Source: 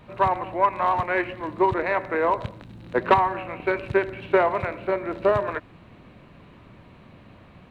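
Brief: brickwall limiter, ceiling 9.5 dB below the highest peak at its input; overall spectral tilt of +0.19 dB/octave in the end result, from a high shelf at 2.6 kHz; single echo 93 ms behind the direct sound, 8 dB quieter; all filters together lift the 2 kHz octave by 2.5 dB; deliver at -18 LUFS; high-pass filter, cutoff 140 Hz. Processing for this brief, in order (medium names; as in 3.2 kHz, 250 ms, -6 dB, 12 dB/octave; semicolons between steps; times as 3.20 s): high-pass 140 Hz; peaking EQ 2 kHz +5 dB; treble shelf 2.6 kHz -4.5 dB; peak limiter -14.5 dBFS; delay 93 ms -8 dB; trim +8 dB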